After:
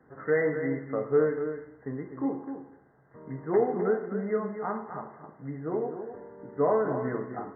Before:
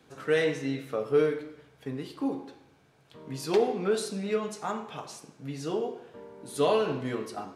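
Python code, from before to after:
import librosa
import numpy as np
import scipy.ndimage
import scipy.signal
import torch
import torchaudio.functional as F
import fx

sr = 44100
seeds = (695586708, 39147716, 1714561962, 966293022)

p1 = fx.brickwall_lowpass(x, sr, high_hz=2100.0)
y = p1 + fx.echo_single(p1, sr, ms=255, db=-9.0, dry=0)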